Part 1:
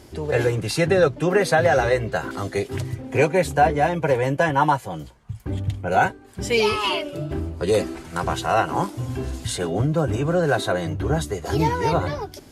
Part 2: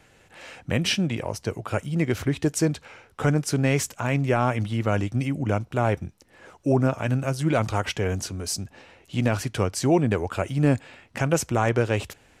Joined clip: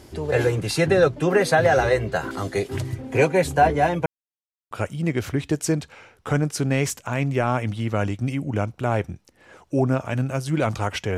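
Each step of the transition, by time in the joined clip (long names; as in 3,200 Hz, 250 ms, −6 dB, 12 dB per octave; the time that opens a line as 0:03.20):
part 1
0:04.06–0:04.71: silence
0:04.71: continue with part 2 from 0:01.64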